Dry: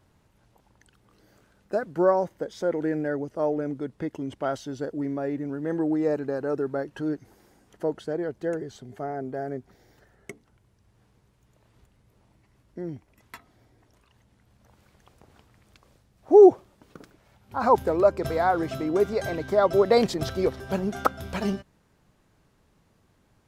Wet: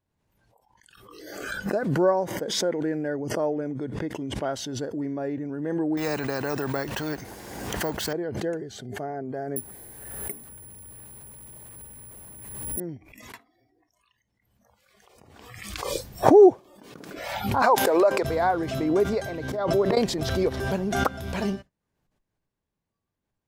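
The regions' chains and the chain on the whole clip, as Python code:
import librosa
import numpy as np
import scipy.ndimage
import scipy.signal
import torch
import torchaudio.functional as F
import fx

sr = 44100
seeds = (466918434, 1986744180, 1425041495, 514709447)

y = fx.chain(x, sr, fx.highpass(hz=57.0, slope=12),
    fx.resample_bad(factor=2, down='none', up='hold'),
    fx.spectral_comp(ratio=2.0), at=(5.97, 8.13))
y = fx.chain(y, sr, fx.zero_step(step_db=-45.5),
    fx.high_shelf(hz=3700.0, db=-11.0),
    fx.resample_bad(factor=4, down='filtered', up='zero_stuff'), at=(9.56, 12.8))
y = fx.chain(y, sr, fx.highpass(hz=480.0, slope=12),
    fx.env_flatten(amount_pct=50), at=(17.62, 18.23))
y = fx.chain(y, sr, fx.auto_swell(attack_ms=245.0),
    fx.comb_fb(f0_hz=66.0, decay_s=1.1, harmonics='all', damping=0.0, mix_pct=30), at=(19.23, 19.97))
y = fx.notch(y, sr, hz=1300.0, q=12.0)
y = fx.noise_reduce_blind(y, sr, reduce_db=20)
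y = fx.pre_swell(y, sr, db_per_s=39.0)
y = y * librosa.db_to_amplitude(-1.0)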